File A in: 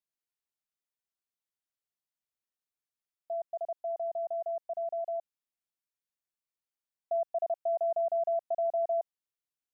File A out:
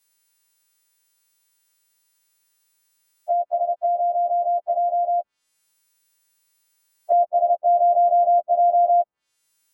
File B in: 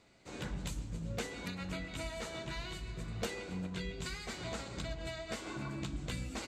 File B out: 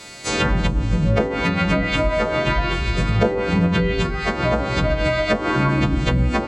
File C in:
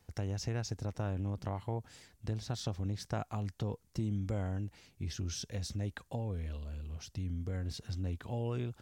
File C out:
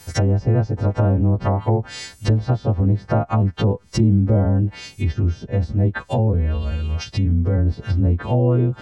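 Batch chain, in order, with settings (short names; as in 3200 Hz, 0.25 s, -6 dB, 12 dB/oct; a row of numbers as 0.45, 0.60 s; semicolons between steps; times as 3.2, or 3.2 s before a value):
frequency quantiser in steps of 2 st; treble ducked by the level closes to 710 Hz, closed at -33.5 dBFS; match loudness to -20 LUFS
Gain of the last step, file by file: +17.0, +24.0, +20.0 dB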